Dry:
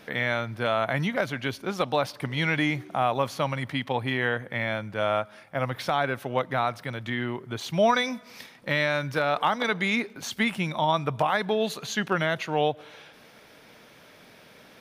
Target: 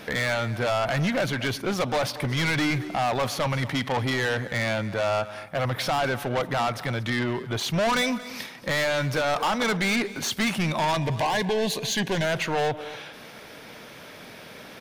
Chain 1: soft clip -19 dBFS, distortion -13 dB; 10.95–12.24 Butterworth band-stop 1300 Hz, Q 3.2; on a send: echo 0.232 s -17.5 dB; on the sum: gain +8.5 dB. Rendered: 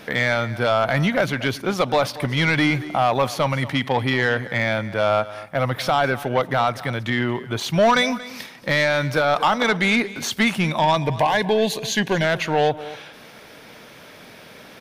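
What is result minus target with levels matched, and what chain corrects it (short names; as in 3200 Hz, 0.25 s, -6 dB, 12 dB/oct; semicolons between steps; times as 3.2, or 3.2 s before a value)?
soft clip: distortion -8 dB
soft clip -29.5 dBFS, distortion -5 dB; 10.95–12.24 Butterworth band-stop 1300 Hz, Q 3.2; on a send: echo 0.232 s -17.5 dB; on the sum: gain +8.5 dB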